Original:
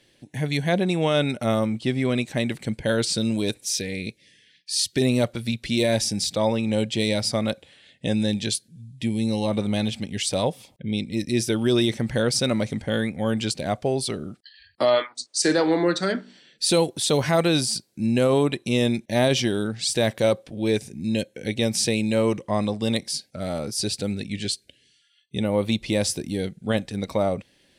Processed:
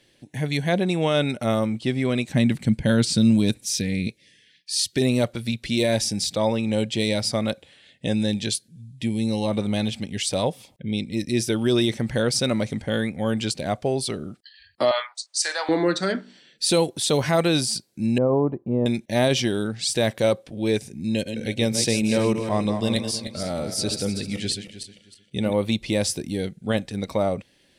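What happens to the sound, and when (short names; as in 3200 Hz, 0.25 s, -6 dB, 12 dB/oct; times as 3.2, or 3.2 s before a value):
2.29–4.08 resonant low shelf 300 Hz +6.5 dB, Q 1.5
14.91–15.69 inverse Chebyshev high-pass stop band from 160 Hz, stop band 70 dB
18.18–18.86 Chebyshev low-pass 970 Hz, order 3
21.09–25.53 regenerating reverse delay 0.156 s, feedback 47%, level -7 dB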